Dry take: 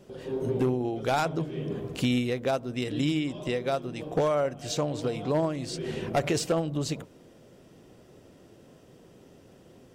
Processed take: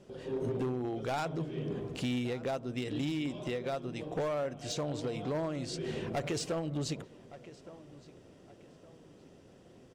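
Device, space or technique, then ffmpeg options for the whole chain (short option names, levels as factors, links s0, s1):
limiter into clipper: -filter_complex "[0:a]lowpass=9300,asplit=2[s0][s1];[s1]adelay=1166,lowpass=f=4200:p=1,volume=0.0841,asplit=2[s2][s3];[s3]adelay=1166,lowpass=f=4200:p=1,volume=0.35,asplit=2[s4][s5];[s5]adelay=1166,lowpass=f=4200:p=1,volume=0.35[s6];[s0][s2][s4][s6]amix=inputs=4:normalize=0,alimiter=limit=0.0794:level=0:latency=1:release=86,asoftclip=type=hard:threshold=0.0562,volume=0.668"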